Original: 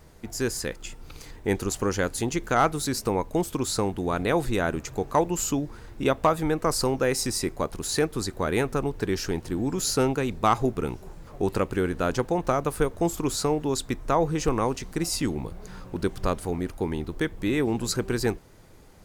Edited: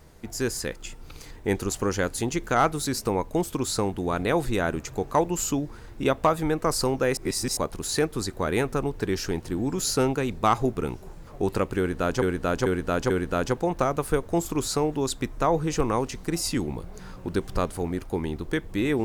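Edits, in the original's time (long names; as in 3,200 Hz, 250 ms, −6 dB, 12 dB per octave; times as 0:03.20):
0:07.17–0:07.57: reverse
0:11.78–0:12.22: repeat, 4 plays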